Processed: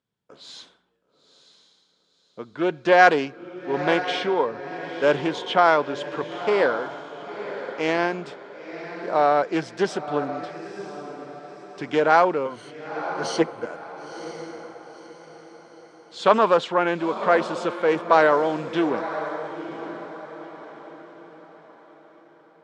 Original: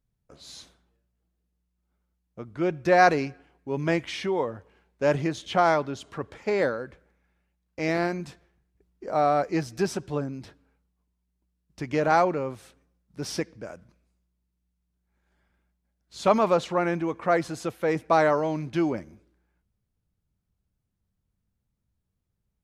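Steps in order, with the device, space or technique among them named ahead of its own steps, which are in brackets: 12.45–13.66 s: rippled EQ curve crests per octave 1.9, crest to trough 17 dB; echo that smears into a reverb 978 ms, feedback 41%, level -11 dB; full-range speaker at full volume (loudspeaker Doppler distortion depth 0.24 ms; cabinet simulation 210–7800 Hz, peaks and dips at 450 Hz +4 dB, 980 Hz +5 dB, 1.5 kHz +5 dB, 3.3 kHz +7 dB, 6.2 kHz -5 dB); trim +2 dB

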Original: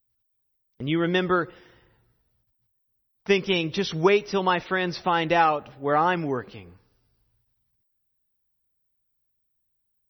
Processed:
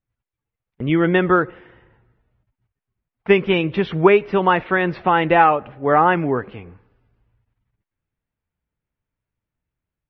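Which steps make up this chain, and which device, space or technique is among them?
action camera in a waterproof case (low-pass 2.6 kHz 24 dB/octave; level rider gain up to 3 dB; trim +4 dB; AAC 96 kbps 48 kHz)

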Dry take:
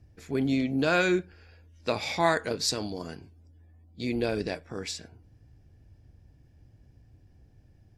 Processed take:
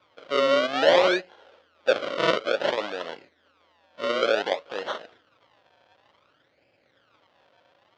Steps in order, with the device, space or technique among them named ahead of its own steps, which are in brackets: circuit-bent sampling toy (decimation with a swept rate 36×, swing 100% 0.56 Hz; cabinet simulation 530–4800 Hz, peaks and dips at 550 Hz +10 dB, 1.4 kHz +4 dB, 3.2 kHz +6 dB); trim +5.5 dB

